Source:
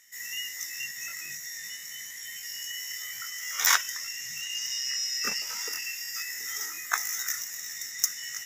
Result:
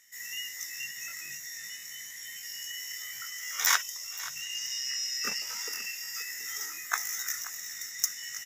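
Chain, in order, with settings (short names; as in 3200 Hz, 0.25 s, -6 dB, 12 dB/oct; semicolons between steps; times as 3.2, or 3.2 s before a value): 3.82–4.36 fixed phaser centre 660 Hz, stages 4; on a send: echo 0.528 s -15.5 dB; on the sum: gain -2.5 dB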